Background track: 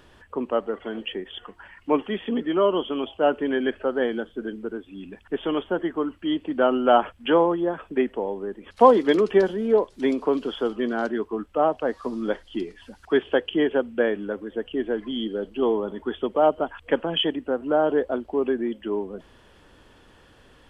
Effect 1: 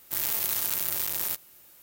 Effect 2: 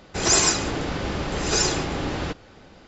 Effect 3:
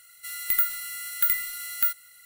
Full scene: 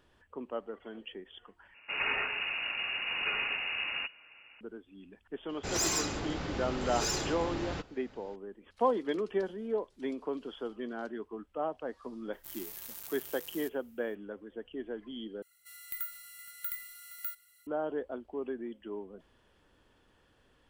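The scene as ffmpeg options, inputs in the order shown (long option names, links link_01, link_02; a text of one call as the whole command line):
ffmpeg -i bed.wav -i cue0.wav -i cue1.wav -i cue2.wav -filter_complex "[2:a]asplit=2[link_01][link_02];[0:a]volume=-13.5dB[link_03];[link_01]lowpass=frequency=2500:width_type=q:width=0.5098,lowpass=frequency=2500:width_type=q:width=0.6013,lowpass=frequency=2500:width_type=q:width=0.9,lowpass=frequency=2500:width_type=q:width=2.563,afreqshift=-2900[link_04];[link_02]asoftclip=type=tanh:threshold=-16dB[link_05];[3:a]aecho=1:1:468:0.158[link_06];[link_03]asplit=3[link_07][link_08][link_09];[link_07]atrim=end=1.744[link_10];[link_04]atrim=end=2.87,asetpts=PTS-STARTPTS,volume=-8dB[link_11];[link_08]atrim=start=4.606:end=15.424[link_12];[link_06]atrim=end=2.25,asetpts=PTS-STARTPTS,volume=-15dB[link_13];[link_09]atrim=start=17.666[link_14];[link_05]atrim=end=2.87,asetpts=PTS-STARTPTS,volume=-9dB,afade=type=in:duration=0.004:curve=hsin,afade=type=out:start_time=2.866:duration=0.004:curve=hsin,adelay=242109S[link_15];[1:a]atrim=end=1.82,asetpts=PTS-STARTPTS,volume=-17dB,afade=type=in:duration=0.004:curve=hsin,afade=type=out:start_time=1.816:duration=0.004:curve=hsin,adelay=12330[link_16];[link_10][link_11]acrossfade=duration=0.004:curve1=hsin:curve2=hsin[link_17];[link_17][link_12]acrossfade=duration=0.004:curve1=hsin:curve2=hsin[link_18];[link_18][link_13]acrossfade=duration=0.004:curve1=hsin:curve2=hsin[link_19];[link_19][link_14]acrossfade=duration=0.004:curve1=hsin:curve2=hsin[link_20];[link_20][link_15][link_16]amix=inputs=3:normalize=0" out.wav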